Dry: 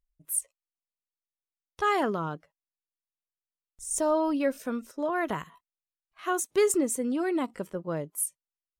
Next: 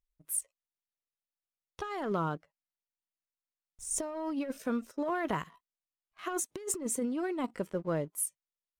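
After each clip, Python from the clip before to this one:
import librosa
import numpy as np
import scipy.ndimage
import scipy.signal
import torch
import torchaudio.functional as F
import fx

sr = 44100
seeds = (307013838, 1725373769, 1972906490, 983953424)

y = fx.high_shelf(x, sr, hz=7900.0, db=-5.5)
y = fx.leveller(y, sr, passes=1)
y = fx.over_compress(y, sr, threshold_db=-26.0, ratio=-0.5)
y = F.gain(torch.from_numpy(y), -6.0).numpy()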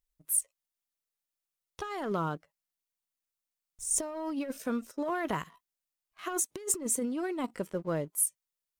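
y = fx.high_shelf(x, sr, hz=5200.0, db=6.5)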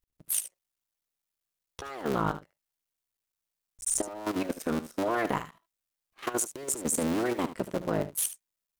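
y = fx.cycle_switch(x, sr, every=3, mode='muted')
y = fx.level_steps(y, sr, step_db=12)
y = y + 10.0 ** (-13.5 / 20.0) * np.pad(y, (int(74 * sr / 1000.0), 0))[:len(y)]
y = F.gain(torch.from_numpy(y), 8.0).numpy()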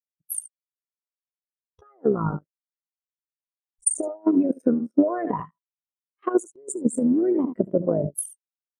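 y = fx.transient(x, sr, attack_db=8, sustain_db=12)
y = fx.spectral_expand(y, sr, expansion=2.5)
y = F.gain(torch.from_numpy(y), 1.5).numpy()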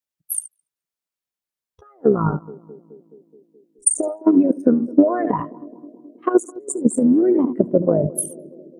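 y = fx.echo_banded(x, sr, ms=212, feedback_pct=74, hz=340.0, wet_db=-19)
y = F.gain(torch.from_numpy(y), 5.5).numpy()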